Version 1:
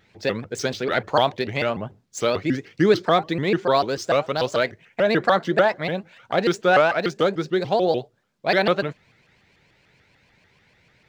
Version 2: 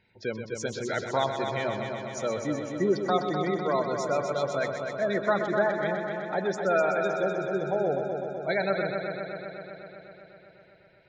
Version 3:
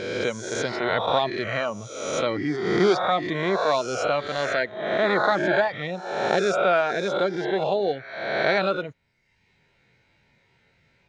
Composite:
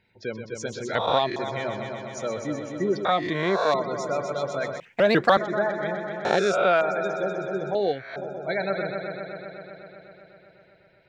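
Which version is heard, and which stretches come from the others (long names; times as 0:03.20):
2
0:00.95–0:01.36: punch in from 3
0:03.05–0:03.74: punch in from 3
0:04.80–0:05.37: punch in from 1
0:06.25–0:06.81: punch in from 3
0:07.75–0:08.16: punch in from 3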